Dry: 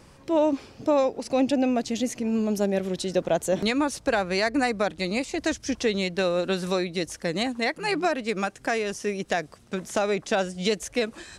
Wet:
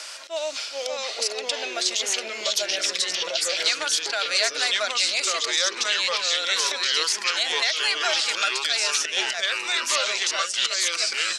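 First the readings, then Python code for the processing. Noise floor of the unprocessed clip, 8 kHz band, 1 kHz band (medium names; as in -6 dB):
-52 dBFS, +13.0 dB, -1.0 dB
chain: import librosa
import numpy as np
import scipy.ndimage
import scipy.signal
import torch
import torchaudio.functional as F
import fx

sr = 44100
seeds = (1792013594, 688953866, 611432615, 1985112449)

p1 = fx.auto_swell(x, sr, attack_ms=243.0)
p2 = fx.high_shelf(p1, sr, hz=2000.0, db=11.5)
p3 = fx.over_compress(p2, sr, threshold_db=-30.0, ratio=-1.0)
p4 = p2 + (p3 * 10.0 ** (1.0 / 20.0))
p5 = np.diff(p4, prepend=0.0)
p6 = fx.small_body(p5, sr, hz=(640.0, 1400.0), ring_ms=45, db=14)
p7 = fx.echo_pitch(p6, sr, ms=363, semitones=-3, count=3, db_per_echo=-3.0)
p8 = fx.bandpass_edges(p7, sr, low_hz=440.0, high_hz=4500.0)
p9 = fx.band_squash(p8, sr, depth_pct=40)
y = p9 * 10.0 ** (5.5 / 20.0)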